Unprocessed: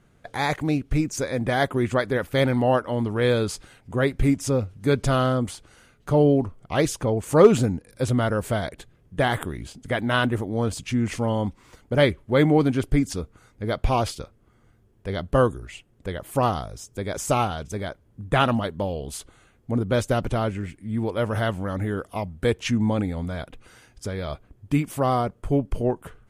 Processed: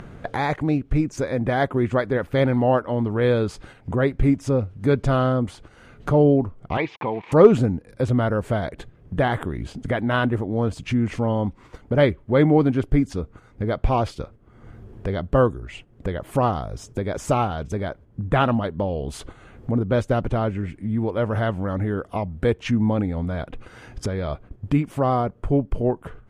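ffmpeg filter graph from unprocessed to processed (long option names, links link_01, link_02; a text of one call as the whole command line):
ffmpeg -i in.wav -filter_complex "[0:a]asettb=1/sr,asplit=3[link_01][link_02][link_03];[link_01]atrim=end=6.774[link_04];[link_02]atrim=start=6.77:end=7.32,asetpts=PTS-STARTPTS,afade=type=in:duration=0.004:curve=qsin,afade=type=out:start_time=0.546:duration=0.004:curve=qsin,aeval=exprs='val(0)*gte(abs(val(0)),0.0133)':channel_layout=same,highpass=260,equalizer=frequency=270:width_type=q:width=4:gain=-8,equalizer=frequency=410:width_type=q:width=4:gain=-5,equalizer=frequency=580:width_type=q:width=4:gain=-9,equalizer=frequency=940:width_type=q:width=4:gain=9,equalizer=frequency=1400:width_type=q:width=4:gain=-10,equalizer=frequency=2300:width_type=q:width=4:gain=10,lowpass=frequency=3600:width=0.5412,lowpass=frequency=3600:width=1.3066[link_05];[link_03]atrim=start=7.316[link_06];[link_04][link_05]acrossfade=duration=0.004:curve1=hsin:curve2=qsin[link_07];[link_07][link_06]acrossfade=duration=0.004:curve1=qsin:curve2=hsin,agate=range=-8dB:threshold=-47dB:ratio=16:detection=peak,lowpass=frequency=1600:poles=1,acompressor=mode=upward:threshold=-22dB:ratio=2.5,volume=2dB" out.wav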